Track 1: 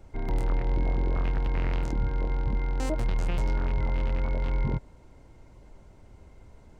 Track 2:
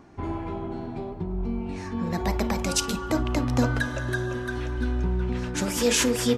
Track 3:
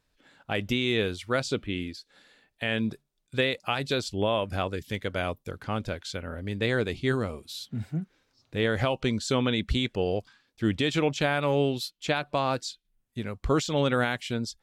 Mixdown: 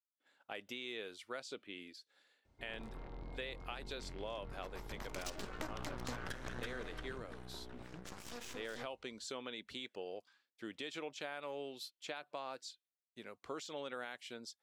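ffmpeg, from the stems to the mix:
ffmpeg -i stem1.wav -i stem2.wav -i stem3.wav -filter_complex "[0:a]highpass=46,equalizer=frequency=3900:width=1.4:gain=7,adelay=2450,volume=-19dB,asplit=2[link_01][link_02];[link_02]volume=-19dB[link_03];[1:a]aeval=exprs='0.316*(cos(1*acos(clip(val(0)/0.316,-1,1)))-cos(1*PI/2))+0.0631*(cos(3*acos(clip(val(0)/0.316,-1,1)))-cos(3*PI/2))+0.0141*(cos(7*acos(clip(val(0)/0.316,-1,1)))-cos(7*PI/2))+0.0316*(cos(8*acos(clip(val(0)/0.316,-1,1)))-cos(8*PI/2))':channel_layout=same,acrossover=split=680|7400[link_04][link_05][link_06];[link_04]acompressor=threshold=-34dB:ratio=4[link_07];[link_05]acompressor=threshold=-35dB:ratio=4[link_08];[link_06]acompressor=threshold=-49dB:ratio=4[link_09];[link_07][link_08][link_09]amix=inputs=3:normalize=0,adelay=2500,volume=-1.5dB,afade=type=in:start_time=4.89:duration=0.51:silence=0.266073,afade=type=out:start_time=6.66:duration=0.57:silence=0.266073[link_10];[2:a]agate=range=-33dB:threshold=-55dB:ratio=3:detection=peak,highpass=380,volume=-11.5dB[link_11];[link_03]aecho=0:1:621:1[link_12];[link_01][link_10][link_11][link_12]amix=inputs=4:normalize=0,acompressor=threshold=-44dB:ratio=2" out.wav

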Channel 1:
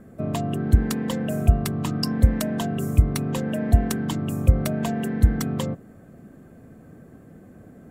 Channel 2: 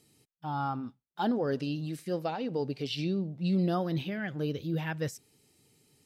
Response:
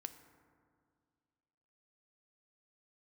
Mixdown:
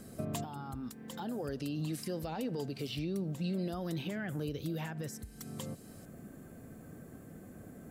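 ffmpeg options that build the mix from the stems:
-filter_complex "[0:a]acompressor=threshold=-31dB:ratio=5,volume=-4.5dB,asplit=2[link_01][link_02];[link_02]volume=-19.5dB[link_03];[1:a]acrossover=split=340|1800[link_04][link_05][link_06];[link_04]acompressor=threshold=-37dB:ratio=4[link_07];[link_05]acompressor=threshold=-39dB:ratio=4[link_08];[link_06]acompressor=threshold=-57dB:ratio=4[link_09];[link_07][link_08][link_09]amix=inputs=3:normalize=0,alimiter=level_in=10dB:limit=-24dB:level=0:latency=1:release=109,volume=-10dB,dynaudnorm=framelen=220:gausssize=11:maxgain=6dB,volume=-1.5dB,asplit=2[link_10][link_11];[link_11]apad=whole_len=348801[link_12];[link_01][link_12]sidechaincompress=threshold=-54dB:ratio=5:attack=16:release=647[link_13];[2:a]atrim=start_sample=2205[link_14];[link_03][link_14]afir=irnorm=-1:irlink=0[link_15];[link_13][link_10][link_15]amix=inputs=3:normalize=0,highshelf=frequency=4200:gain=11.5"

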